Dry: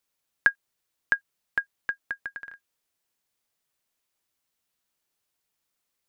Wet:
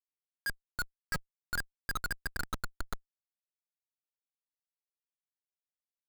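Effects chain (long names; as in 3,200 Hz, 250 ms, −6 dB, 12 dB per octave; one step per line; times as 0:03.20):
delay with pitch and tempo change per echo 271 ms, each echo −2 semitones, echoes 2, each echo −6 dB
comparator with hysteresis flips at −30.5 dBFS
level +3.5 dB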